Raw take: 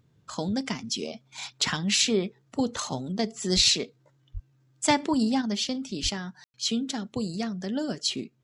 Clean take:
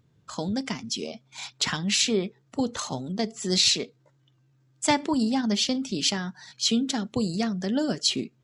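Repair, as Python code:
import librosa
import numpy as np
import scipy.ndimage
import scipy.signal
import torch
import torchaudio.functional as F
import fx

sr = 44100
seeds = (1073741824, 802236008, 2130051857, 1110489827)

y = fx.highpass(x, sr, hz=140.0, slope=24, at=(3.55, 3.67), fade=0.02)
y = fx.highpass(y, sr, hz=140.0, slope=24, at=(4.33, 4.45), fade=0.02)
y = fx.highpass(y, sr, hz=140.0, slope=24, at=(6.02, 6.14), fade=0.02)
y = fx.fix_ambience(y, sr, seeds[0], print_start_s=3.84, print_end_s=4.34, start_s=6.44, end_s=6.54)
y = fx.gain(y, sr, db=fx.steps((0.0, 0.0), (5.42, 4.0)))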